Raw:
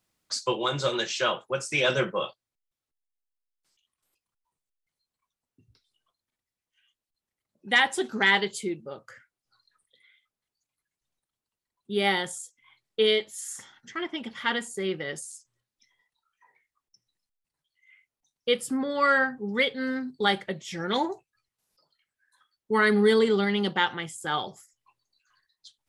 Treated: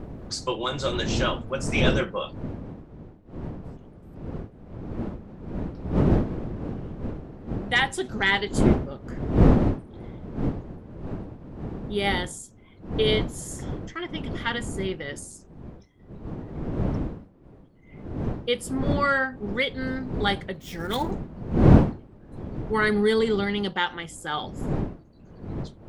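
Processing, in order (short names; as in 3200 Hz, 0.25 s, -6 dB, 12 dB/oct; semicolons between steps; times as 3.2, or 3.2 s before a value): 20.54–21.11 switching dead time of 0.056 ms; wind noise 260 Hz -27 dBFS; gain -1 dB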